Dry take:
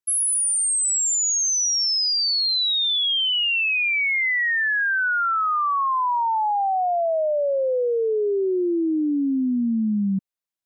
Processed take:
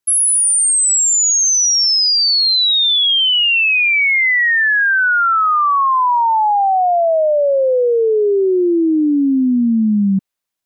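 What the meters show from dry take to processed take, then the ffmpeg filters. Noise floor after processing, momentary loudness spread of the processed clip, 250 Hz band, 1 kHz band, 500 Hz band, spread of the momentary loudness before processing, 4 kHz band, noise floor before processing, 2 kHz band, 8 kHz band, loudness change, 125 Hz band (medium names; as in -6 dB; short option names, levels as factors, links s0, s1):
-21 dBFS, 4 LU, +8.0 dB, +8.0 dB, +8.0 dB, 4 LU, +8.0 dB, -29 dBFS, +8.0 dB, +8.0 dB, +8.0 dB, no reading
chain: -filter_complex "[0:a]acrossover=split=630|4600[s0][s1][s2];[s1]dynaudnorm=f=220:g=9:m=2.66[s3];[s0][s3][s2]amix=inputs=3:normalize=0,alimiter=limit=0.106:level=0:latency=1,volume=2.82"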